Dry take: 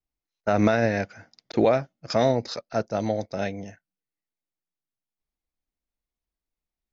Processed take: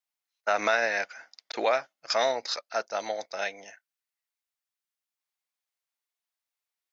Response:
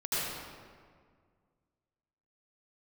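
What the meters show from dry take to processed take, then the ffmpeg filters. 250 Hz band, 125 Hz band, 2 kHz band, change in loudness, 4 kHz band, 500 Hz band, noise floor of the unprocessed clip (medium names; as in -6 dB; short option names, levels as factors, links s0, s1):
-18.5 dB, under -25 dB, +3.5 dB, -3.5 dB, +4.0 dB, -5.5 dB, under -85 dBFS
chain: -af "highpass=960,volume=1.58"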